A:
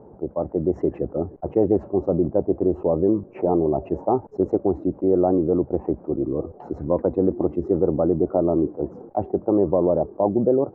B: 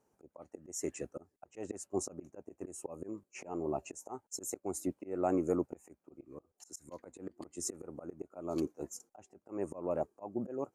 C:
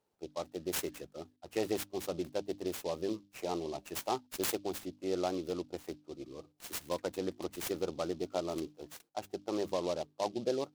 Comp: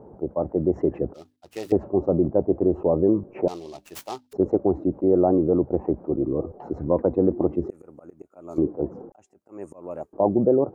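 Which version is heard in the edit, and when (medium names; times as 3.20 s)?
A
1.14–1.72 s: from C
3.48–4.33 s: from C
7.70–8.58 s: from B
9.12–10.13 s: from B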